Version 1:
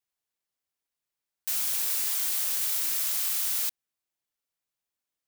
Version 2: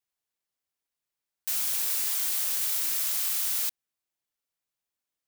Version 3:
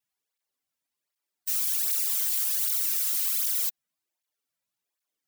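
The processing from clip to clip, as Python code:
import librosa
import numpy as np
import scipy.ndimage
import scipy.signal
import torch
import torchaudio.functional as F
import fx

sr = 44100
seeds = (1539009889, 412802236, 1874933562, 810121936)

y1 = x
y2 = fx.spec_expand(y1, sr, power=1.6)
y2 = fx.flanger_cancel(y2, sr, hz=1.3, depth_ms=2.9)
y2 = F.gain(torch.from_numpy(y2), 5.0).numpy()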